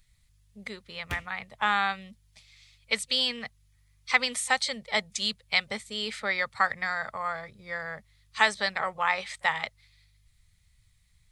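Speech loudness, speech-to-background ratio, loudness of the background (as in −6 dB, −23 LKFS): −28.5 LKFS, 14.5 dB, −43.0 LKFS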